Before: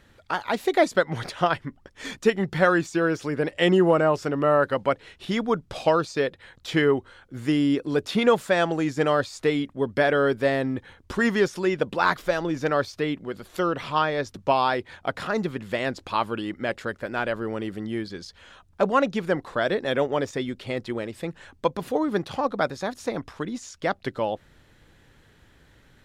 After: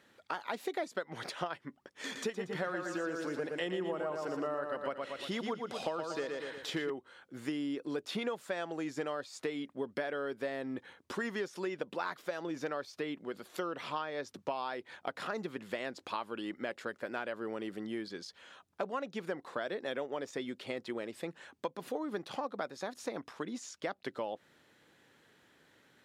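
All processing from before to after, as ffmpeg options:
ffmpeg -i in.wav -filter_complex "[0:a]asettb=1/sr,asplit=3[link_01][link_02][link_03];[link_01]atrim=end=2.044[link_04];[link_02]atrim=start=2.04:end=6.9,asetpts=PTS-STARTPTS,afade=type=in:duration=0.004:curve=qsin,afade=type=out:start_time=4.856:duration=0.004:curve=qsin,bandreject=frequency=2300:width=20,acompressor=mode=upward:threshold=-31dB:ratio=2.5:attack=3.2:release=140:knee=2.83:detection=peak,aecho=1:1:117|234|351|468|585:0.531|0.228|0.0982|0.0422|0.0181,atrim=end_sample=214326[link_05];[link_03]atrim=start=6.896[link_06];[link_04][link_05]acrossfade=duration=0.004:curve1=hsin:curve2=qsin[link_07];[link_07][link_06]acrossfade=duration=0.004:curve1=qsin:curve2=hsin,highpass=230,acompressor=threshold=-28dB:ratio=6,volume=-5.5dB" out.wav

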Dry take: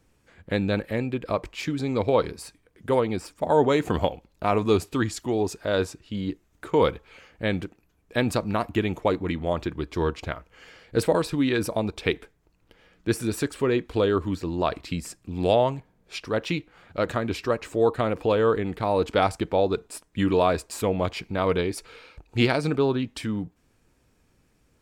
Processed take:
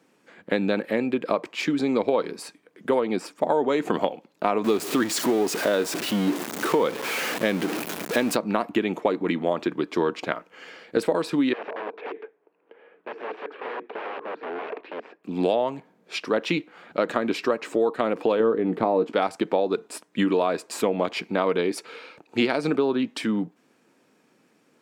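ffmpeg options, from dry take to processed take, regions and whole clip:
ffmpeg -i in.wav -filter_complex "[0:a]asettb=1/sr,asplit=3[link_01][link_02][link_03];[link_01]atrim=end=4.644[link_04];[link_02]atrim=start=4.64:end=8.36,asetpts=PTS-STARTPTS,afade=type=in:duration=0.004:curve=qsin,afade=type=out:start_time=3.716:duration=0.004:curve=qsin,aeval=exprs='val(0)+0.5*0.0398*sgn(val(0))':channel_layout=same,highshelf=frequency=9300:gain=7.5[link_05];[link_03]atrim=start=8.356[link_06];[link_04][link_05]acrossfade=duration=0.004:curve1=hsin:curve2=qsin[link_07];[link_07][link_06]acrossfade=duration=0.004:curve1=qsin:curve2=hsin,asettb=1/sr,asplit=3[link_08][link_09][link_10];[link_08]atrim=end=11.534[link_11];[link_09]atrim=start=11.53:end=15.24,asetpts=PTS-STARTPTS,afade=type=in:duration=0.004:curve=qsin,afade=type=out:start_time=3.706:duration=0.004:curve=qsin,acompressor=threshold=-31dB:ratio=2.5:attack=3.2:release=140:knee=1:detection=peak,aeval=exprs='(mod(35.5*val(0)+1,2)-1)/35.5':channel_layout=same,highpass=420,equalizer=frequency=440:width_type=q:width=4:gain=9,equalizer=frequency=1300:width_type=q:width=4:gain=-4,equalizer=frequency=2000:width_type=q:width=4:gain=-5,lowpass=frequency=2300:width=0.5412,lowpass=frequency=2300:width=1.3066[link_12];[link_10]atrim=start=15.236[link_13];[link_11][link_12]acrossfade=duration=0.004:curve1=hsin:curve2=qsin[link_14];[link_14][link_13]acrossfade=duration=0.004:curve1=qsin:curve2=hsin,asettb=1/sr,asplit=3[link_15][link_16][link_17];[link_15]atrim=end=18.404[link_18];[link_16]atrim=start=18.4:end=19.12,asetpts=PTS-STARTPTS,afade=type=in:duration=0.004:curve=qsin,afade=type=out:start_time=0.716:duration=0.004:curve=qsin,tiltshelf=frequency=1200:gain=7,asplit=2[link_19][link_20];[link_20]adelay=17,volume=-10.5dB[link_21];[link_19][link_21]amix=inputs=2:normalize=0,atrim=end_sample=31752[link_22];[link_17]atrim=start=19.116[link_23];[link_18][link_22]acrossfade=duration=0.004:curve1=hsin:curve2=qsin[link_24];[link_24][link_23]acrossfade=duration=0.004:curve1=qsin:curve2=hsin,highpass=frequency=200:width=0.5412,highpass=frequency=200:width=1.3066,highshelf=frequency=5200:gain=-8,acompressor=threshold=-25dB:ratio=6,volume=6.5dB" out.wav

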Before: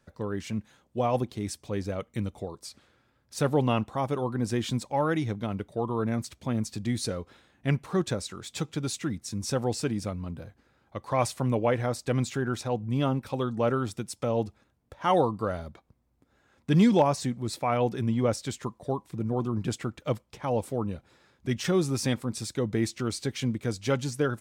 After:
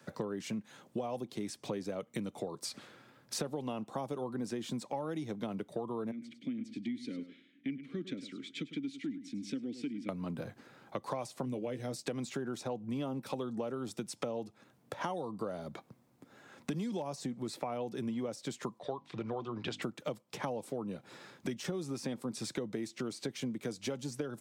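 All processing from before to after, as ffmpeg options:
ffmpeg -i in.wav -filter_complex "[0:a]asettb=1/sr,asplit=3[link_01][link_02][link_03];[link_01]atrim=end=6.114[link_04];[link_02]atrim=start=6.11:end=10.09,asetpts=PTS-STARTPTS,afade=type=in:duration=0.004:curve=qsin,afade=type=out:start_time=3.976:duration=0.004:curve=qsin,asplit=3[link_05][link_06][link_07];[link_05]bandpass=frequency=270:width_type=q:width=8,volume=0dB[link_08];[link_06]bandpass=frequency=2290:width_type=q:width=8,volume=-6dB[link_09];[link_07]bandpass=frequency=3010:width_type=q:width=8,volume=-9dB[link_10];[link_08][link_09][link_10]amix=inputs=3:normalize=0,aecho=1:1:102|204:0.188|0.0339,atrim=end_sample=175518[link_11];[link_03]atrim=start=10.086[link_12];[link_04][link_11]acrossfade=duration=0.004:curve1=hsin:curve2=qsin[link_13];[link_13][link_12]acrossfade=duration=0.004:curve1=qsin:curve2=hsin,asettb=1/sr,asplit=3[link_14][link_15][link_16];[link_14]atrim=end=11.454[link_17];[link_15]atrim=start=11.45:end=12.06,asetpts=PTS-STARTPTS,afade=type=in:duration=0.004:curve=qsin,afade=type=out:start_time=0.606:duration=0.004:curve=qsin,equalizer=frequency=1000:width_type=o:width=2:gain=-13.5,asplit=2[link_18][link_19];[link_19]adelay=15,volume=-9dB[link_20];[link_18][link_20]amix=inputs=2:normalize=0,atrim=end_sample=26901[link_21];[link_16]atrim=start=12.056[link_22];[link_17][link_21]acrossfade=duration=0.004:curve1=hsin:curve2=qsin[link_23];[link_23][link_22]acrossfade=duration=0.004:curve1=qsin:curve2=hsin,asettb=1/sr,asplit=3[link_24][link_25][link_26];[link_24]atrim=end=18.794[link_27];[link_25]atrim=start=18.79:end=19.82,asetpts=PTS-STARTPTS,afade=type=in:duration=0.004:curve=qsin,afade=type=out:start_time=1.026:duration=0.004:curve=qsin,lowpass=frequency=3500:width_type=q:width=1.5,equalizer=frequency=190:width=0.67:gain=-13,bandreject=frequency=50:width_type=h:width=6,bandreject=frequency=100:width_type=h:width=6,bandreject=frequency=150:width_type=h:width=6,bandreject=frequency=200:width_type=h:width=6,bandreject=frequency=250:width_type=h:width=6,bandreject=frequency=300:width_type=h:width=6[link_28];[link_26]atrim=start=19.816[link_29];[link_27][link_28]acrossfade=duration=0.004:curve1=hsin:curve2=qsin[link_30];[link_30][link_29]acrossfade=duration=0.004:curve1=qsin:curve2=hsin,acrossover=split=170|1000|3000|7000[link_31][link_32][link_33][link_34][link_35];[link_31]acompressor=threshold=-43dB:ratio=4[link_36];[link_32]acompressor=threshold=-26dB:ratio=4[link_37];[link_33]acompressor=threshold=-50dB:ratio=4[link_38];[link_34]acompressor=threshold=-46dB:ratio=4[link_39];[link_35]acompressor=threshold=-51dB:ratio=4[link_40];[link_36][link_37][link_38][link_39][link_40]amix=inputs=5:normalize=0,highpass=frequency=130:width=0.5412,highpass=frequency=130:width=1.3066,acompressor=threshold=-44dB:ratio=8,volume=9dB" out.wav

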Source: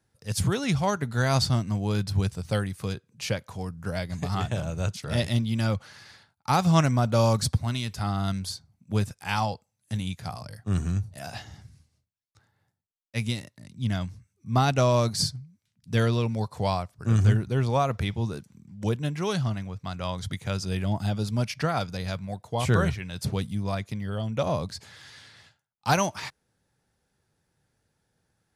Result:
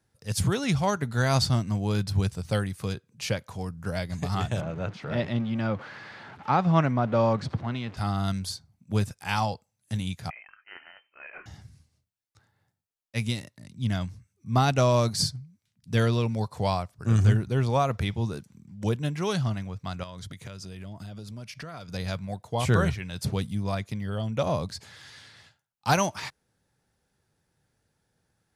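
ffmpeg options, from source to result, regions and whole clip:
ffmpeg -i in.wav -filter_complex "[0:a]asettb=1/sr,asplit=3[link_01][link_02][link_03];[link_01]atrim=end=4.614[link_04];[link_02]atrim=start=4.61:end=7.97,asetpts=PTS-STARTPTS,afade=type=in:duration=0.004:curve=qsin,afade=type=out:start_time=3.356:duration=0.004:curve=qsin,aeval=exprs='val(0)+0.5*0.015*sgn(val(0))':channel_layout=same,highpass=150,lowpass=2200[link_05];[link_03]atrim=start=7.966[link_06];[link_04][link_05]acrossfade=duration=0.004:curve1=hsin:curve2=qsin[link_07];[link_07][link_06]acrossfade=duration=0.004:curve1=qsin:curve2=hsin,asettb=1/sr,asplit=3[link_08][link_09][link_10];[link_08]atrim=end=10.304[link_11];[link_09]atrim=start=10.3:end=11.46,asetpts=PTS-STARTPTS,afade=type=in:duration=0.004:curve=qsin,afade=type=out:start_time=1.156:duration=0.004:curve=qsin,highpass=970,lowpass=frequency=2700:width_type=q:width=0.5098,lowpass=frequency=2700:width_type=q:width=0.6013,lowpass=frequency=2700:width_type=q:width=0.9,lowpass=frequency=2700:width_type=q:width=2.563,afreqshift=-3200[link_12];[link_10]atrim=start=11.456[link_13];[link_11][link_12]acrossfade=duration=0.004:curve1=hsin:curve2=qsin[link_14];[link_14][link_13]acrossfade=duration=0.004:curve1=qsin:curve2=hsin,asettb=1/sr,asplit=3[link_15][link_16][link_17];[link_15]atrim=end=20.034[link_18];[link_16]atrim=start=20.03:end=21.94,asetpts=PTS-STARTPTS,afade=type=in:duration=0.004:curve=qsin,afade=type=out:start_time=1.906:duration=0.004:curve=qsin,equalizer=frequency=77:width_type=o:width=0.3:gain=-4,bandreject=frequency=810:width=6.6,acompressor=threshold=-36dB:ratio=12:attack=3.2:release=140:knee=1:detection=peak[link_19];[link_17]atrim=start=21.936[link_20];[link_18][link_19]acrossfade=duration=0.004:curve1=hsin:curve2=qsin[link_21];[link_21][link_20]acrossfade=duration=0.004:curve1=qsin:curve2=hsin" out.wav

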